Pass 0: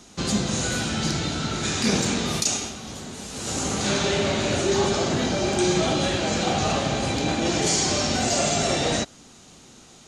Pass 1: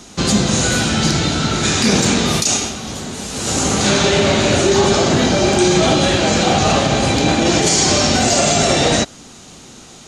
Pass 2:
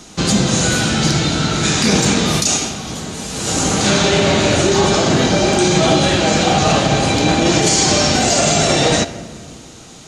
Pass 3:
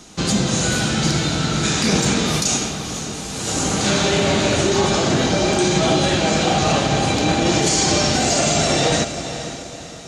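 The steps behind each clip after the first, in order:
maximiser +12.5 dB; gain -3 dB
shoebox room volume 3000 m³, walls mixed, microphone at 0.56 m
diffused feedback echo 0.505 s, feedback 42%, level -11 dB; gain -4 dB

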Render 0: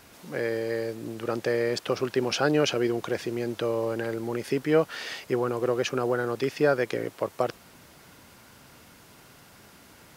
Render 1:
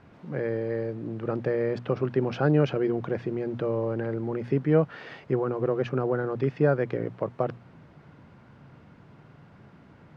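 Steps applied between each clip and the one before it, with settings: Bessel low-pass 1500 Hz, order 2; bell 140 Hz +11 dB 1.3 oct; notches 60/120/180/240 Hz; gain -1.5 dB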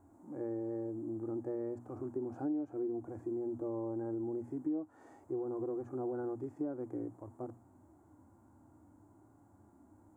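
harmonic-percussive split percussive -15 dB; EQ curve 100 Hz 0 dB, 150 Hz -21 dB, 310 Hz +10 dB, 450 Hz -9 dB, 820 Hz +3 dB, 2800 Hz -27 dB, 5100 Hz -15 dB, 7300 Hz +14 dB; compressor 5:1, threshold -30 dBFS, peak gain reduction 13.5 dB; gain -4.5 dB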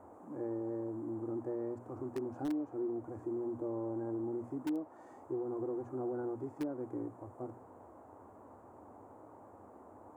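in parallel at -10 dB: wrapped overs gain 29 dB; on the sum: band noise 230–1000 Hz -54 dBFS; gain -2.5 dB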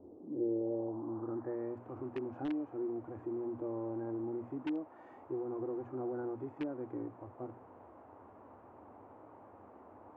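low-pass sweep 370 Hz -> 2700 Hz, 0.4–1.71; gain -1 dB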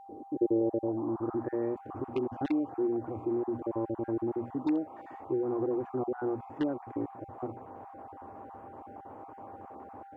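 random spectral dropouts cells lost 24%; whine 790 Hz -56 dBFS; gain +8 dB

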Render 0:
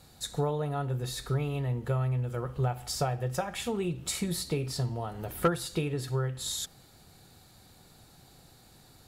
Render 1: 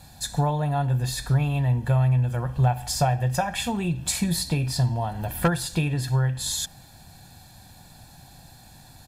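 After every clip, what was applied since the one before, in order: comb 1.2 ms, depth 69%; gain +5.5 dB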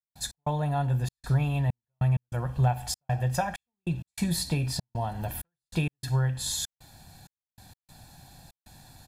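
step gate ".x.xxxx.xxx." 97 bpm -60 dB; gain -3 dB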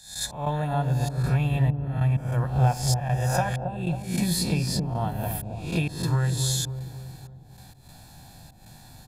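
spectral swells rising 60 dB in 0.54 s; dark delay 0.273 s, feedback 49%, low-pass 620 Hz, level -4 dB; gain +1 dB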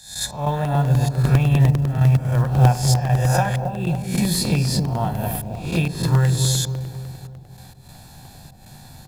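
short-mantissa float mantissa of 4-bit; on a send at -14 dB: reverb RT60 1.0 s, pre-delay 3 ms; on the sum: crackling interface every 0.10 s, samples 64, repeat, from 0.65; gain +4.5 dB

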